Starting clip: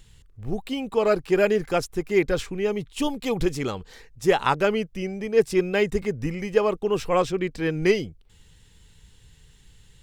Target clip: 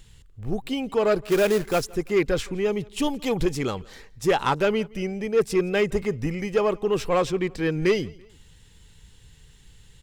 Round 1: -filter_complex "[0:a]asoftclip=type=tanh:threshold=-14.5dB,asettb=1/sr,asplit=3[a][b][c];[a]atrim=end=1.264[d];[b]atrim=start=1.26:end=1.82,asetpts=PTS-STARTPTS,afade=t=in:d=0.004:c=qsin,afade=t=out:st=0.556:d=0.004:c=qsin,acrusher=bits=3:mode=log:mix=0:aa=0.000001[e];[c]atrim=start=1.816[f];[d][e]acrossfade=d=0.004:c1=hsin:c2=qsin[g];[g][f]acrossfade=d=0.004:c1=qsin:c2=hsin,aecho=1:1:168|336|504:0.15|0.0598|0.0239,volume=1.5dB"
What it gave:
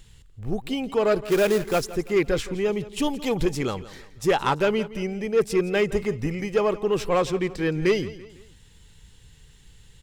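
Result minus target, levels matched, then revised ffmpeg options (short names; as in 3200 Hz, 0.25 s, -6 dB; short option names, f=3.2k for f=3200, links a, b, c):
echo-to-direct +8 dB
-filter_complex "[0:a]asoftclip=type=tanh:threshold=-14.5dB,asettb=1/sr,asplit=3[a][b][c];[a]atrim=end=1.264[d];[b]atrim=start=1.26:end=1.82,asetpts=PTS-STARTPTS,afade=t=in:d=0.004:c=qsin,afade=t=out:st=0.556:d=0.004:c=qsin,acrusher=bits=3:mode=log:mix=0:aa=0.000001[e];[c]atrim=start=1.816[f];[d][e]acrossfade=d=0.004:c1=hsin:c2=qsin[g];[g][f]acrossfade=d=0.004:c1=qsin:c2=hsin,aecho=1:1:168|336:0.0596|0.0238,volume=1.5dB"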